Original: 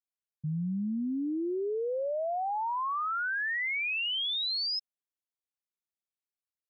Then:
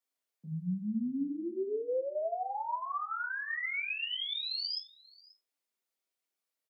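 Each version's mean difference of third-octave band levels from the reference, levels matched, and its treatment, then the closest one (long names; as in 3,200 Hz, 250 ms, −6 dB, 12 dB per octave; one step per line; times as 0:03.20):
3.0 dB: high-pass filter 250 Hz 24 dB per octave
brickwall limiter −39.5 dBFS, peak gain reduction 11 dB
on a send: single-tap delay 535 ms −23.5 dB
on the sum: rectangular room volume 130 cubic metres, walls furnished, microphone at 1.7 metres
level +3 dB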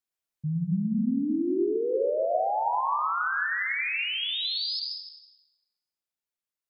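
5.5 dB: speech leveller
mains-hum notches 60/120/180/240 Hz
dense smooth reverb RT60 1.3 s, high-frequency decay 0.75×, pre-delay 105 ms, DRR 1 dB
level +1.5 dB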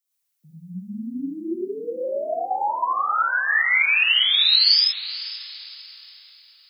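8.0 dB: Butterworth high-pass 170 Hz
spectral tilt +3.5 dB per octave
on a send: feedback delay with all-pass diffusion 477 ms, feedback 41%, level −15 dB
on the sum: reverb whose tail is shaped and stops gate 140 ms rising, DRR −7.5 dB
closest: first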